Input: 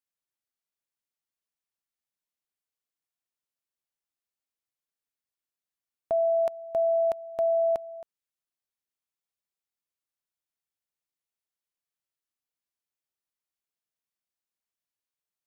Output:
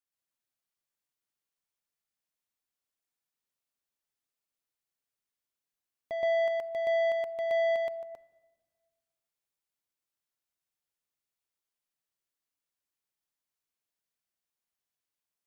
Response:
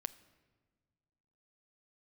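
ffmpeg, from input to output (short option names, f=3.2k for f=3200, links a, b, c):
-filter_complex "[0:a]asoftclip=type=tanh:threshold=-28.5dB,asplit=2[a][b];[1:a]atrim=start_sample=2205,adelay=122[c];[b][c]afir=irnorm=-1:irlink=0,volume=4dB[d];[a][d]amix=inputs=2:normalize=0,volume=-3dB"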